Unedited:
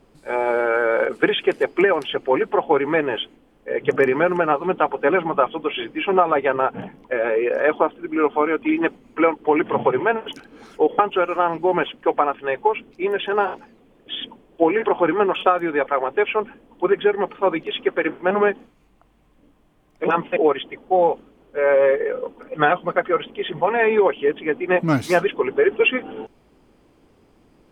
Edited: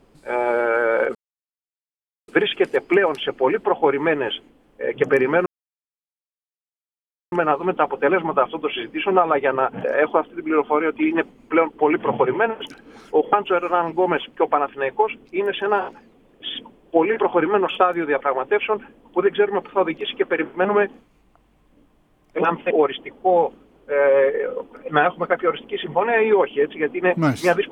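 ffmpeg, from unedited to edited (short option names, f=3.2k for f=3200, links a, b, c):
-filter_complex "[0:a]asplit=4[a][b][c][d];[a]atrim=end=1.15,asetpts=PTS-STARTPTS,afade=t=out:st=1.146:d=0.004:c=hsin,apad=pad_dur=1.13[e];[b]atrim=start=1.15:end=4.33,asetpts=PTS-STARTPTS,afade=t=in:d=0.004:c=hsin,afade=t=out:st=3.176:d=0.004:c=hsin,apad=pad_dur=1.86[f];[c]atrim=start=4.33:end=6.852,asetpts=PTS-STARTPTS,afade=t=in:d=0.004:c=hsin[g];[d]atrim=start=7.498[h];[e][f][g]concat=n=3:v=0:a=1[i];[i][h]acrossfade=d=0.004:c1=hsin:c2=hsin"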